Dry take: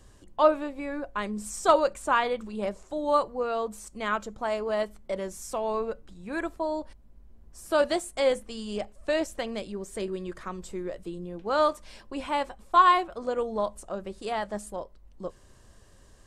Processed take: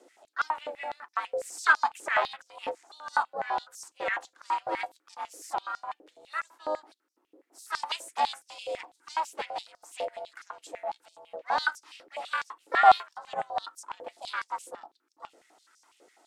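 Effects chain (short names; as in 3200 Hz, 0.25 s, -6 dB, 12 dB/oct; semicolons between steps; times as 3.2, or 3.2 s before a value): ring modulator 310 Hz; harmoniser -3 st -10 dB, +5 st -14 dB; stepped high-pass 12 Hz 520–5500 Hz; gain -2.5 dB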